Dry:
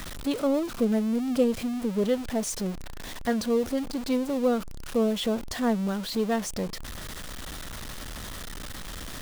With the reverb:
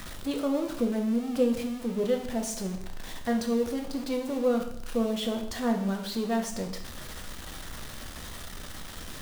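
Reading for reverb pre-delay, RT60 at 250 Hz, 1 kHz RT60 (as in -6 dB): 5 ms, 0.70 s, 0.70 s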